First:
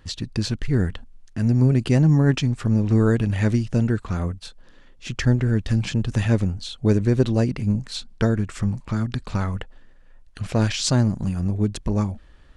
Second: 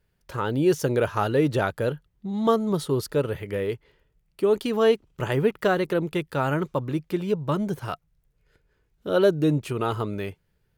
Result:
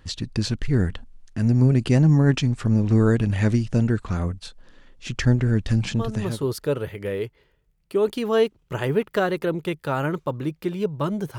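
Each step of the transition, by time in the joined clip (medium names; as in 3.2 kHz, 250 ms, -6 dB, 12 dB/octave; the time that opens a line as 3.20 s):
first
6.17 s: go over to second from 2.65 s, crossfade 0.64 s linear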